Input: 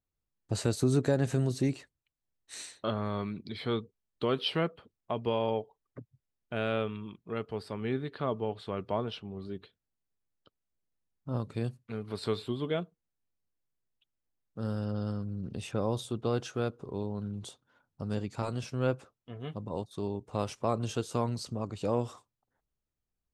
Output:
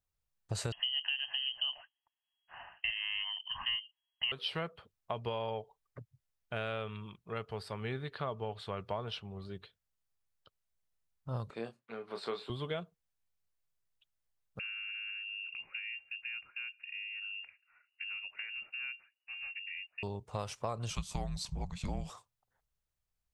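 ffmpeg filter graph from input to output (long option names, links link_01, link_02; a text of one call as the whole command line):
ffmpeg -i in.wav -filter_complex "[0:a]asettb=1/sr,asplit=3[link_01][link_02][link_03];[link_01]atrim=end=0.724[link_04];[link_02]atrim=start=0.72:end=4.32,asetpts=PTS-STARTPTS,afade=type=in:duration=0.004:curve=qsin,afade=type=out:start_time=3.596:duration=0.004:curve=qsin,lowpass=frequency=2800:width_type=q:width=0.5098,lowpass=frequency=2800:width_type=q:width=0.6013,lowpass=frequency=2800:width_type=q:width=0.9,lowpass=frequency=2800:width_type=q:width=2.563,afreqshift=-3300,equalizer=frequency=670:width=4.1:gain=3.5,aecho=1:1:1.1:0.69,atrim=end_sample=158760[link_05];[link_03]atrim=start=4.316[link_06];[link_04][link_05]acrossfade=duration=0.004:curve1=hsin:curve2=qsin[link_07];[link_07][link_06]acrossfade=duration=0.004:curve1=qsin:curve2=hsin,asettb=1/sr,asplit=3[link_08][link_09][link_10];[link_08]atrim=end=11.504[link_11];[link_09]atrim=start=11.5:end=12.5,asetpts=PTS-STARTPTS,afade=type=in:duration=0.004:curve=qsin,afade=type=out:start_time=0.996:duration=0.004:curve=qsin,highpass=frequency=230:width=0.5412,highpass=frequency=230:width=1.3066,aemphasis=mode=reproduction:type=75fm,asplit=2[link_12][link_13];[link_13]adelay=26,volume=-7dB[link_14];[link_12][link_14]amix=inputs=2:normalize=0,atrim=end_sample=44100[link_15];[link_10]atrim=start=12.496[link_16];[link_11][link_15]acrossfade=duration=0.004:curve1=hsin:curve2=qsin[link_17];[link_17][link_16]acrossfade=duration=0.004:curve1=qsin:curve2=hsin,asettb=1/sr,asplit=3[link_18][link_19][link_20];[link_18]atrim=end=14.594[link_21];[link_19]atrim=start=14.59:end=20.03,asetpts=PTS-STARTPTS,afade=type=in:duration=0.004:curve=qsin,afade=type=out:start_time=5.436:duration=0.004:curve=qsin,acrossover=split=140|1300[link_22][link_23][link_24];[link_22]acompressor=threshold=-49dB:ratio=4[link_25];[link_23]acompressor=threshold=-46dB:ratio=4[link_26];[link_24]acompressor=threshold=-59dB:ratio=4[link_27];[link_25][link_26][link_27]amix=inputs=3:normalize=0,lowpass=frequency=2500:width_type=q:width=0.5098,lowpass=frequency=2500:width_type=q:width=0.6013,lowpass=frequency=2500:width_type=q:width=0.9,lowpass=frequency=2500:width_type=q:width=2.563,afreqshift=-2900[link_28];[link_20]atrim=start=20.026[link_29];[link_21][link_28]acrossfade=duration=0.004:curve1=hsin:curve2=qsin[link_30];[link_30][link_29]acrossfade=duration=0.004:curve1=qsin:curve2=hsin,asettb=1/sr,asplit=3[link_31][link_32][link_33];[link_31]atrim=end=20.904[link_34];[link_32]atrim=start=20.9:end=22.1,asetpts=PTS-STARTPTS,afade=type=in:duration=0.004:curve=qsin,afade=type=out:start_time=1.196:duration=0.004:curve=qsin,highpass=54,afreqshift=-280[link_35];[link_33]atrim=start=22.096[link_36];[link_34][link_35]acrossfade=duration=0.004:curve1=hsin:curve2=qsin[link_37];[link_37][link_36]acrossfade=duration=0.004:curve1=qsin:curve2=hsin,equalizer=frequency=280:width_type=o:width=1.2:gain=-12.5,acompressor=threshold=-34dB:ratio=6,volume=1.5dB" out.wav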